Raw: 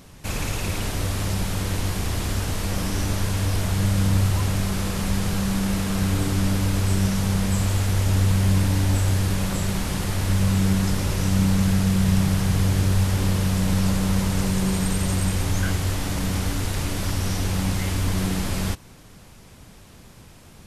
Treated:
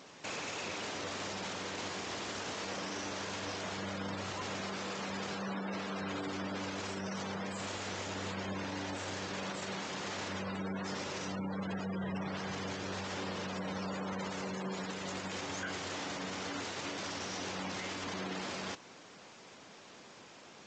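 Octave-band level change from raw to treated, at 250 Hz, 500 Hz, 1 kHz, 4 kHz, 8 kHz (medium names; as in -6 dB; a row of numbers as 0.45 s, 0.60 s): -16.0 dB, -8.0 dB, -7.0 dB, -9.5 dB, -14.5 dB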